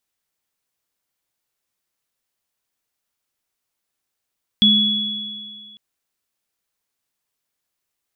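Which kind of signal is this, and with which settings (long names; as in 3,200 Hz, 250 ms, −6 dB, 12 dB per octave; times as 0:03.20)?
inharmonic partials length 1.15 s, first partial 210 Hz, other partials 3,380 Hz, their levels 4 dB, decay 1.71 s, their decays 2.17 s, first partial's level −14 dB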